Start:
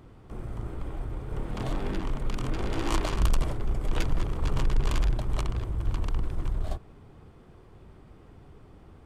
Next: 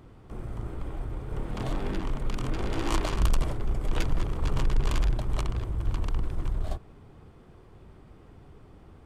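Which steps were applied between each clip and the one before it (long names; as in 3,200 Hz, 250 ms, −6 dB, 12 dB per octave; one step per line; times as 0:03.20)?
no processing that can be heard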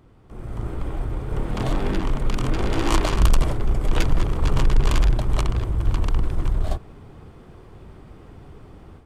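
automatic gain control gain up to 10 dB
level −2.5 dB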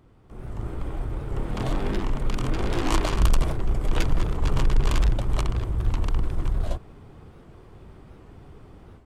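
wow of a warped record 78 rpm, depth 160 cents
level −3 dB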